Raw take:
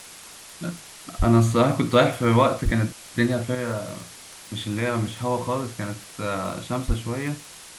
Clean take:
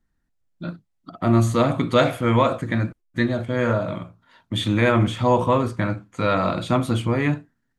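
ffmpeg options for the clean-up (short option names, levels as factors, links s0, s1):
-filter_complex "[0:a]adeclick=t=4,asplit=3[s0][s1][s2];[s0]afade=t=out:st=1.18:d=0.02[s3];[s1]highpass=f=140:w=0.5412,highpass=f=140:w=1.3066,afade=t=in:st=1.18:d=0.02,afade=t=out:st=1.3:d=0.02[s4];[s2]afade=t=in:st=1.3:d=0.02[s5];[s3][s4][s5]amix=inputs=3:normalize=0,asplit=3[s6][s7][s8];[s6]afade=t=out:st=2.64:d=0.02[s9];[s7]highpass=f=140:w=0.5412,highpass=f=140:w=1.3066,afade=t=in:st=2.64:d=0.02,afade=t=out:st=2.76:d=0.02[s10];[s8]afade=t=in:st=2.76:d=0.02[s11];[s9][s10][s11]amix=inputs=3:normalize=0,asplit=3[s12][s13][s14];[s12]afade=t=out:st=6.87:d=0.02[s15];[s13]highpass=f=140:w=0.5412,highpass=f=140:w=1.3066,afade=t=in:st=6.87:d=0.02,afade=t=out:st=6.99:d=0.02[s16];[s14]afade=t=in:st=6.99:d=0.02[s17];[s15][s16][s17]amix=inputs=3:normalize=0,afwtdn=0.0089,asetnsamples=n=441:p=0,asendcmd='3.55 volume volume 7dB',volume=1"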